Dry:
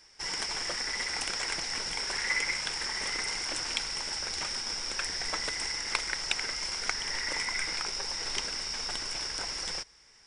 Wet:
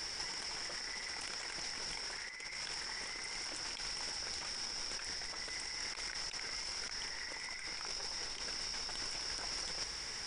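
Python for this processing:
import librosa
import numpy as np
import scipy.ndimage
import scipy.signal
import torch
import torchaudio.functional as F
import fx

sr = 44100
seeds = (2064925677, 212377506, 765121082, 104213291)

y = fx.over_compress(x, sr, threshold_db=-46.0, ratio=-1.0)
y = y * librosa.db_to_amplitude(3.5)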